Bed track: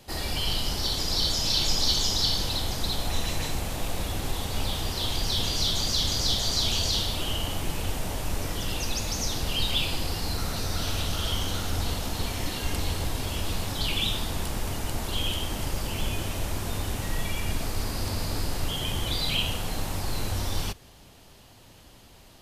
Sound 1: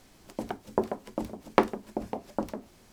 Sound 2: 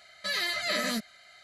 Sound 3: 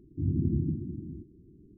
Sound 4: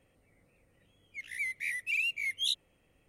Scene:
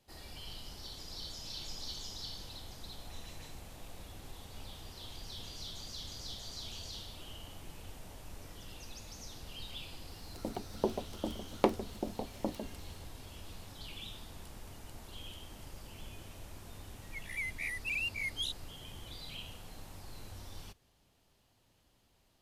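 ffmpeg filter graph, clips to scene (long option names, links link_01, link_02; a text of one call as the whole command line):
ffmpeg -i bed.wav -i cue0.wav -i cue1.wav -i cue2.wav -i cue3.wav -filter_complex "[0:a]volume=-19dB[link_01];[1:a]equalizer=frequency=1500:width=1.5:gain=-12[link_02];[4:a]alimiter=level_in=2dB:limit=-24dB:level=0:latency=1:release=71,volume=-2dB[link_03];[link_02]atrim=end=2.92,asetpts=PTS-STARTPTS,volume=-4dB,afade=type=in:duration=0.004:curve=hsin,afade=type=out:start_time=2.916:duration=0.004:curve=hsin,adelay=10060[link_04];[link_03]atrim=end=3.08,asetpts=PTS-STARTPTS,volume=-3.5dB,afade=type=in:duration=0.004:curve=hsin,afade=type=out:start_time=3.076:duration=0.004:curve=hsin,adelay=15980[link_05];[link_01][link_04][link_05]amix=inputs=3:normalize=0" out.wav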